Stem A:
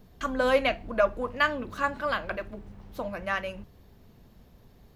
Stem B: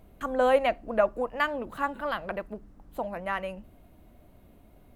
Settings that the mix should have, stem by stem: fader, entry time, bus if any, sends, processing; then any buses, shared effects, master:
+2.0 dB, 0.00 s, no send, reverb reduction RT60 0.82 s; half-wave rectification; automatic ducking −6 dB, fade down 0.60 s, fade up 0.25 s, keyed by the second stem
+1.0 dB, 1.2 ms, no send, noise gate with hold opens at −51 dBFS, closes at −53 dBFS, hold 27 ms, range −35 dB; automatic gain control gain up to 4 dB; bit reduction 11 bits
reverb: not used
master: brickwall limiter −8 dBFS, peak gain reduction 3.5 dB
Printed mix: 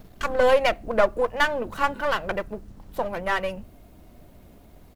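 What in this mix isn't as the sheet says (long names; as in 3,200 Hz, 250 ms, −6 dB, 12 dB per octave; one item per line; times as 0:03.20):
stem A +2.0 dB → +9.5 dB
stem B: polarity flipped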